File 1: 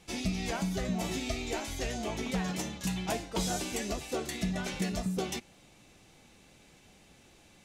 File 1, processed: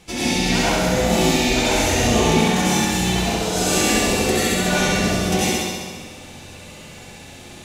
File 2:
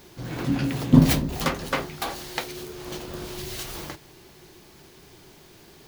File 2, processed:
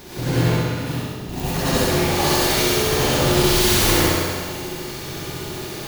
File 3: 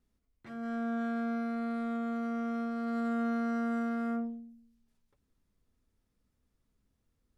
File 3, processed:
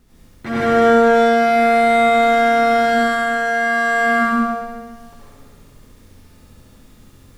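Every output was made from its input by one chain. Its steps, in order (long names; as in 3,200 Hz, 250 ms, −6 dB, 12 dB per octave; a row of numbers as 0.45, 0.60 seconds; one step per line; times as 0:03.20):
compressor whose output falls as the input rises −34 dBFS, ratio −0.5
on a send: flutter between parallel walls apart 11.5 metres, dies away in 1.4 s
on the sum: dense smooth reverb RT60 1.1 s, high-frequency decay 0.85×, pre-delay 75 ms, DRR −7.5 dB
normalise the peak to −3 dBFS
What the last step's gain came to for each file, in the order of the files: +7.0, +2.0, +20.0 decibels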